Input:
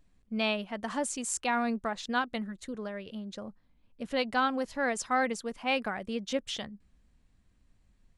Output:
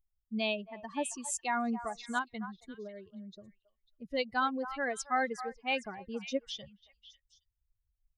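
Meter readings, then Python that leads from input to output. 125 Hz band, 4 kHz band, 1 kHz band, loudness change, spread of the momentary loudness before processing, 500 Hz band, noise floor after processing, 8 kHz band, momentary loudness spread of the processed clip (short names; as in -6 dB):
n/a, -4.0 dB, -2.5 dB, -3.0 dB, 12 LU, -3.5 dB, -83 dBFS, -3.5 dB, 14 LU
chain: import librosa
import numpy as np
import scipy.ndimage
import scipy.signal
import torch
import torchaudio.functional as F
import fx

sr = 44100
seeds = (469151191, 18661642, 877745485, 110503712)

y = fx.bin_expand(x, sr, power=2.0)
y = fx.echo_stepped(y, sr, ms=273, hz=990.0, octaves=1.4, feedback_pct=70, wet_db=-10)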